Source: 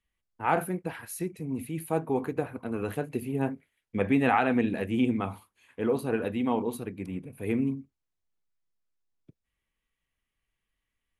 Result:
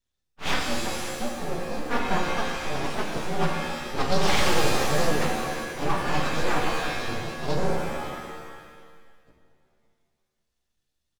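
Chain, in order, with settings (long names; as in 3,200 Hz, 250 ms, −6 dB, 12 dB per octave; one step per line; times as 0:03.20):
partials spread apart or drawn together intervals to 129%
mains-hum notches 50/100/150/200/250 Hz
full-wave rectification
on a send: repeating echo 550 ms, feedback 16%, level −16 dB
on the sum: reverb with rising layers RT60 1.4 s, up +7 semitones, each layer −2 dB, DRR 2 dB
level +6 dB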